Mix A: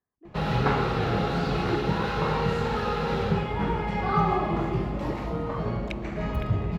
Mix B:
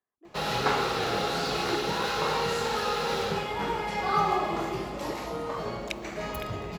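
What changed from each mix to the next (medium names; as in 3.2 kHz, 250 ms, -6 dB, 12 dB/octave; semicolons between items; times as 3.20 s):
master: add tone controls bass -13 dB, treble +14 dB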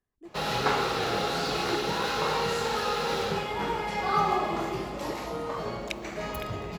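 speech: remove band-pass filter 1 kHz, Q 0.75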